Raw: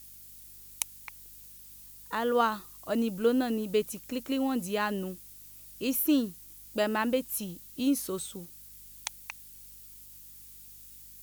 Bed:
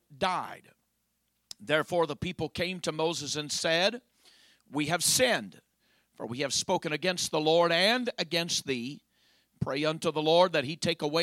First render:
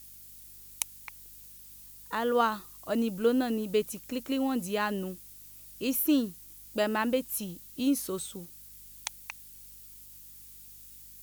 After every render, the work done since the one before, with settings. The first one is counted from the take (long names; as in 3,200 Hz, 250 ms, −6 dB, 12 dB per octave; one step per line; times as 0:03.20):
no processing that can be heard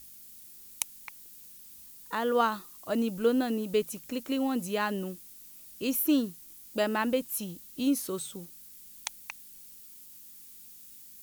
hum removal 50 Hz, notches 3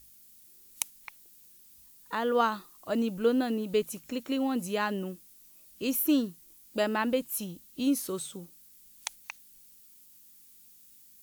noise reduction from a noise print 6 dB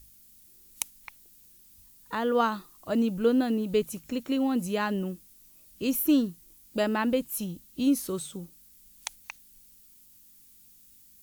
low-shelf EQ 180 Hz +10 dB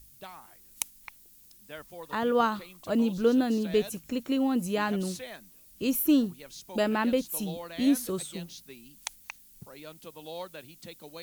mix in bed −17 dB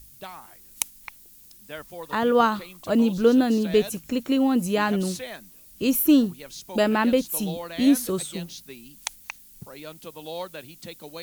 level +5.5 dB